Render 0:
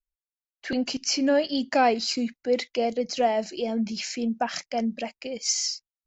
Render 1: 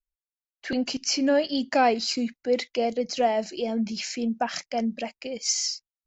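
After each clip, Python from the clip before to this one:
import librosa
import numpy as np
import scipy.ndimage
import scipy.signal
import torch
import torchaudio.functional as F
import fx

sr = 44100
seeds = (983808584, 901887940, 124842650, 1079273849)

y = x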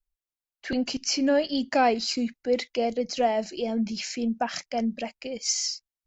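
y = fx.low_shelf(x, sr, hz=78.0, db=9.5)
y = y * librosa.db_to_amplitude(-1.0)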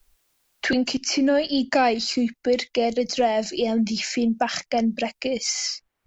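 y = fx.band_squash(x, sr, depth_pct=70)
y = y * librosa.db_to_amplitude(4.0)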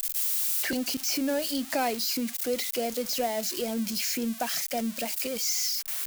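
y = x + 0.5 * 10.0 ** (-15.5 / 20.0) * np.diff(np.sign(x), prepend=np.sign(x[:1]))
y = y * librosa.db_to_amplitude(-8.5)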